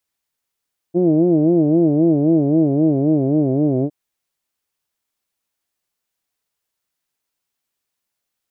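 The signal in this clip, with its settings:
vowel from formants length 2.96 s, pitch 168 Hz, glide −3.5 semitones, vibrato 3.8 Hz, vibrato depth 1.5 semitones, F1 330 Hz, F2 640 Hz, F3 2,300 Hz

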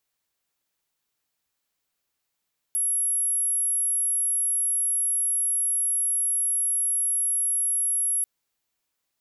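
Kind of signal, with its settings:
tone sine 11,200 Hz −21.5 dBFS 5.49 s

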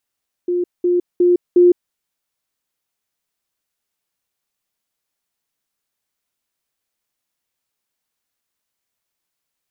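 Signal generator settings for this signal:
level staircase 354 Hz −15.5 dBFS, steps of 3 dB, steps 4, 0.16 s 0.20 s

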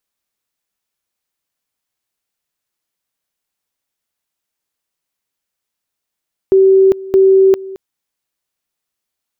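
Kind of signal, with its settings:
tone at two levels in turn 384 Hz −5 dBFS, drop 19.5 dB, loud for 0.40 s, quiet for 0.22 s, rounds 2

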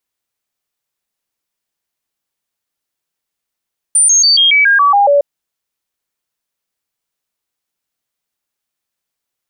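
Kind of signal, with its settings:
stepped sweep 9,150 Hz down, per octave 2, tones 9, 0.14 s, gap 0.00 s −6 dBFS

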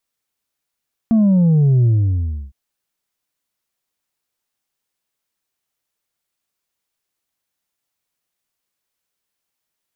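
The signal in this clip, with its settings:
bass drop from 230 Hz, over 1.41 s, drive 3 dB, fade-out 0.67 s, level −10.5 dB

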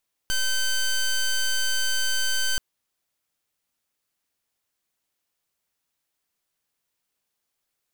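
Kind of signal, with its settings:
pulse wave 1,540 Hz, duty 12% −23 dBFS 2.28 s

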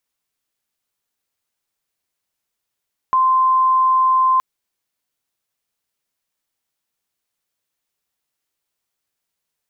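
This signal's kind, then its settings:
tone sine 1,040 Hz −11.5 dBFS 1.27 s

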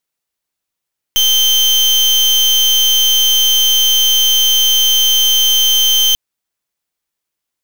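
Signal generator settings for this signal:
pulse wave 3,120 Hz, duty 35% −11 dBFS 4.99 s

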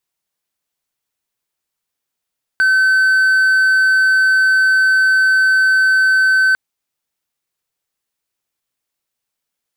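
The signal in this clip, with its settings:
tone triangle 1,530 Hz −7.5 dBFS 3.95 s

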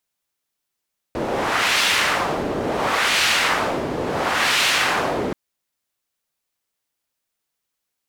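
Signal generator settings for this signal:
wind from filtered noise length 4.18 s, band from 380 Hz, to 2,800 Hz, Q 1, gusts 3, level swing 6.5 dB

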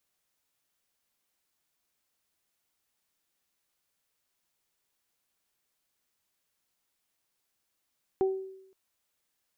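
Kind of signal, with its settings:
harmonic partials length 0.52 s, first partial 382 Hz, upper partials −10 dB, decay 0.80 s, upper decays 0.31 s, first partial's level −21 dB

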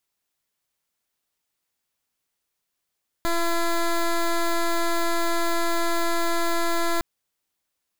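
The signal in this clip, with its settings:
pulse wave 338 Hz, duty 12% −22 dBFS 3.76 s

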